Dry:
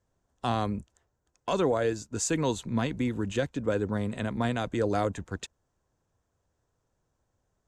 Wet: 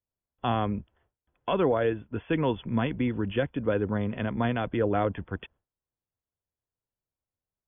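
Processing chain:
noise gate with hold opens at −59 dBFS
linear-phase brick-wall low-pass 3,500 Hz
level +1.5 dB

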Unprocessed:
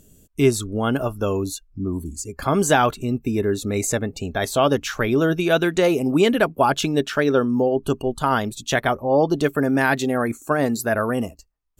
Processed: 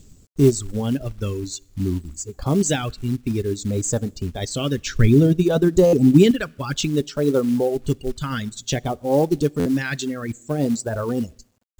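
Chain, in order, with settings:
bit reduction 9 bits
Chebyshev low-pass filter 8,100 Hz, order 8
low-shelf EQ 140 Hz +7 dB
notch filter 670 Hz, Q 19
coupled-rooms reverb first 0.83 s, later 2.2 s, from −27 dB, DRR 15 dB
reverb reduction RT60 1.9 s
all-pass phaser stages 2, 0.57 Hz, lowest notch 770–2,200 Hz
log-companded quantiser 6 bits
0:04.86–0:06.31: low-shelf EQ 300 Hz +11 dB
buffer that repeats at 0:05.86/0:09.59, samples 512, times 5
level +1.5 dB

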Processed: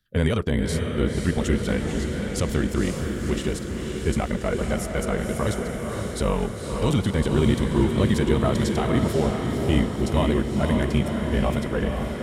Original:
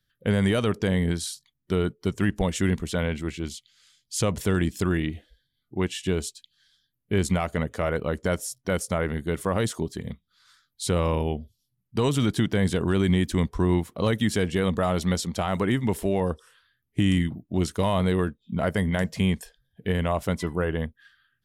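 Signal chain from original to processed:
harmonic and percussive parts rebalanced percussive −5 dB
time stretch by overlap-add 0.57×, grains 21 ms
feedback delay with all-pass diffusion 519 ms, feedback 65%, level −4 dB
level +3.5 dB

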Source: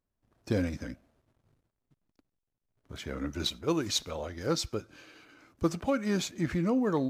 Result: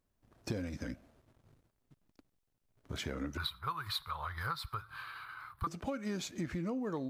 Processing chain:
0:03.37–0:05.67: drawn EQ curve 140 Hz 0 dB, 250 Hz −28 dB, 400 Hz −17 dB, 580 Hz −16 dB, 1,100 Hz +14 dB, 2,700 Hz −5 dB, 4,100 Hz +3 dB, 6,300 Hz −22 dB, 9,800 Hz +3 dB, 15,000 Hz +6 dB
downward compressor 6 to 1, threshold −40 dBFS, peak gain reduction 17.5 dB
level +4.5 dB

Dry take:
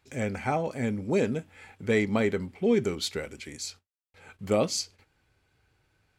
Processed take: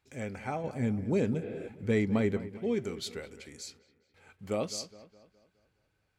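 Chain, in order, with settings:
0:00.64–0:02.37: low-shelf EQ 310 Hz +10 dB
delay with a low-pass on its return 208 ms, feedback 46%, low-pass 2,600 Hz, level −15 dB
0:01.44–0:01.66: healed spectral selection 250–5,100 Hz before
level −7.5 dB

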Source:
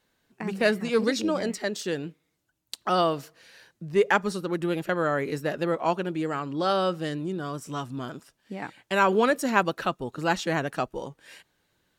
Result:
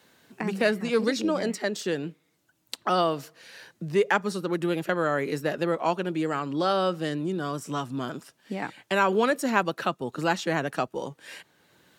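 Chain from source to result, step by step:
high-pass filter 110 Hz
multiband upward and downward compressor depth 40%

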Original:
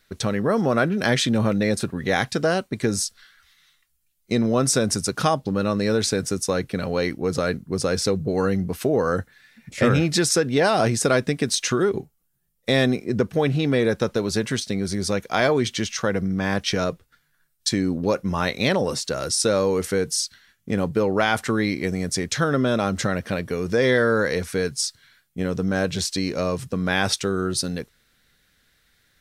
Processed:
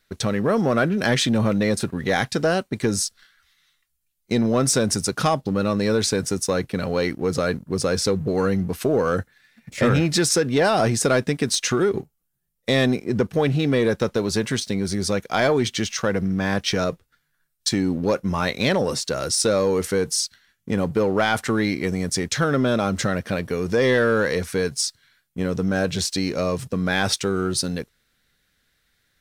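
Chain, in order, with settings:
leveller curve on the samples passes 1
level −2.5 dB

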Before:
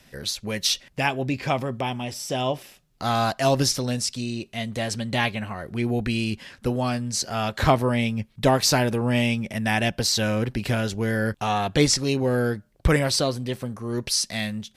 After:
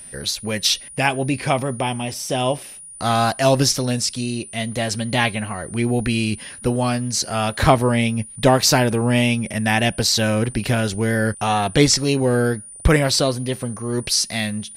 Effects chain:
steady tone 9,500 Hz −41 dBFS
tape wow and flutter 29 cents
level +4.5 dB

